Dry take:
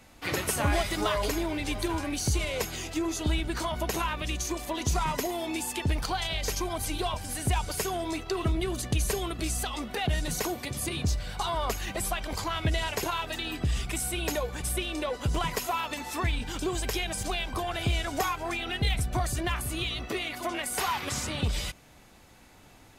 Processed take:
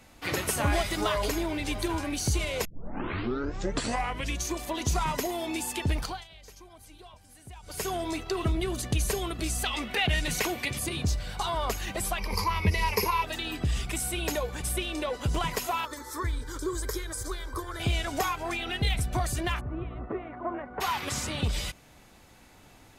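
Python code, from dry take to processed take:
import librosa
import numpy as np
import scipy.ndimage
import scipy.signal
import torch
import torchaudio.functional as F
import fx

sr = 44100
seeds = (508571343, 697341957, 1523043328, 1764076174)

y = fx.peak_eq(x, sr, hz=2400.0, db=9.5, octaves=1.1, at=(9.64, 10.79))
y = fx.ripple_eq(y, sr, per_octave=0.85, db=15, at=(12.18, 13.24))
y = fx.fixed_phaser(y, sr, hz=730.0, stages=6, at=(15.85, 17.8))
y = fx.lowpass(y, sr, hz=1400.0, slope=24, at=(19.59, 20.8), fade=0.02)
y = fx.edit(y, sr, fx.tape_start(start_s=2.65, length_s=1.78),
    fx.fade_down_up(start_s=5.98, length_s=1.91, db=-19.5, fade_s=0.27), tone=tone)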